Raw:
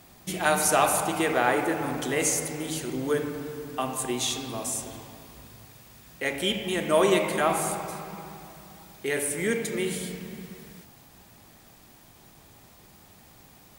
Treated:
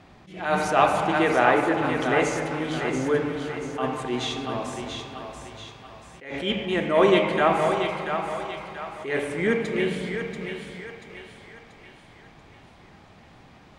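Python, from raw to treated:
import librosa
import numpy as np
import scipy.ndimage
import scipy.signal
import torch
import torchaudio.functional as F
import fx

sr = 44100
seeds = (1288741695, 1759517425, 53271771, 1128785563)

y = scipy.signal.sosfilt(scipy.signal.butter(2, 3000.0, 'lowpass', fs=sr, output='sos'), x)
y = fx.echo_thinned(y, sr, ms=685, feedback_pct=47, hz=480.0, wet_db=-6.0)
y = fx.attack_slew(y, sr, db_per_s=110.0)
y = F.gain(torch.from_numpy(y), 4.0).numpy()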